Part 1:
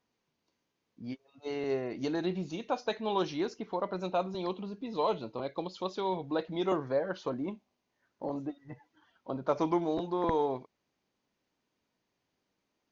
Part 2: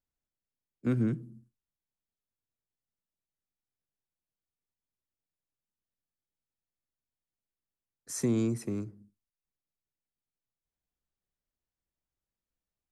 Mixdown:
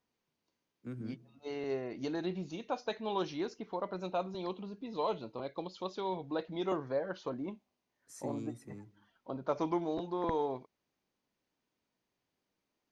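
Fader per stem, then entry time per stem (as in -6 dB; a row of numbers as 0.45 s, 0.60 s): -4.0 dB, -14.5 dB; 0.00 s, 0.00 s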